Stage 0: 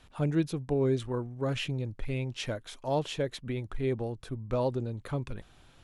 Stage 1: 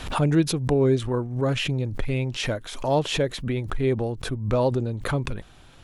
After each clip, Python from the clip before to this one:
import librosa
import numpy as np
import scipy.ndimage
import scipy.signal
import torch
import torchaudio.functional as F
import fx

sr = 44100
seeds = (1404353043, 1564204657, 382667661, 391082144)

y = fx.pre_swell(x, sr, db_per_s=85.0)
y = y * librosa.db_to_amplitude(7.0)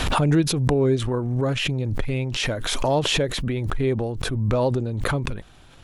y = fx.pre_swell(x, sr, db_per_s=26.0)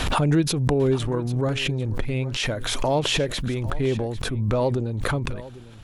y = x + 10.0 ** (-17.5 / 20.0) * np.pad(x, (int(799 * sr / 1000.0), 0))[:len(x)]
y = y * librosa.db_to_amplitude(-1.0)